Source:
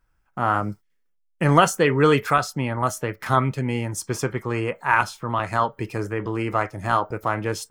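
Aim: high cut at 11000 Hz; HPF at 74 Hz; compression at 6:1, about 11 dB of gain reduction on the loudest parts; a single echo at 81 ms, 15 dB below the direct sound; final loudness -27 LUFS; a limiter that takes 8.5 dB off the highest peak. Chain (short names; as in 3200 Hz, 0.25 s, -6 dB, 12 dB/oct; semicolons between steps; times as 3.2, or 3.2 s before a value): HPF 74 Hz; LPF 11000 Hz; compressor 6:1, threshold -22 dBFS; limiter -18.5 dBFS; echo 81 ms -15 dB; gain +4 dB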